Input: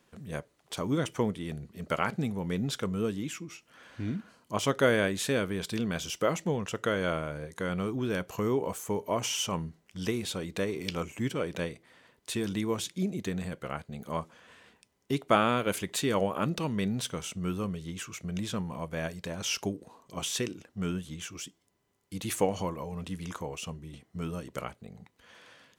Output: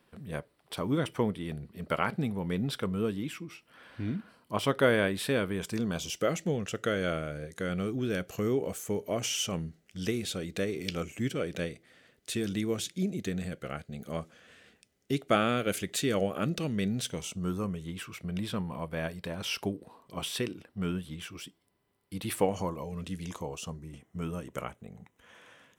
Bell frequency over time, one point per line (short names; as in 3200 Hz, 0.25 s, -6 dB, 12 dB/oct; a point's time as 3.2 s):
bell -15 dB 0.34 oct
5.48 s 6600 Hz
6.22 s 970 Hz
17.02 s 970 Hz
17.98 s 6600 Hz
22.44 s 6600 Hz
22.97 s 750 Hz
24.04 s 4500 Hz